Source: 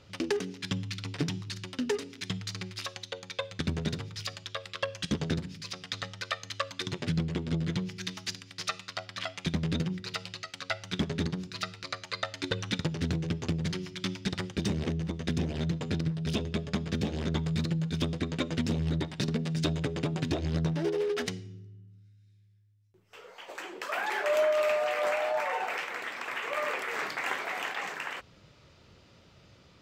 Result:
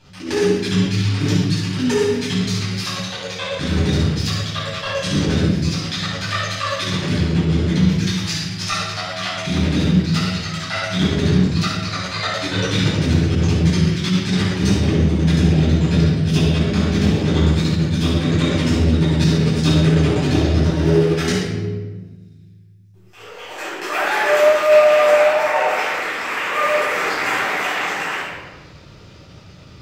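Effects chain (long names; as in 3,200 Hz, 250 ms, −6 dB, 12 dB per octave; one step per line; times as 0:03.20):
bass and treble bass +1 dB, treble +4 dB
rectangular room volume 1,000 cubic metres, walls mixed, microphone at 8.6 metres
level that may rise only so fast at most 100 dB per second
level −1 dB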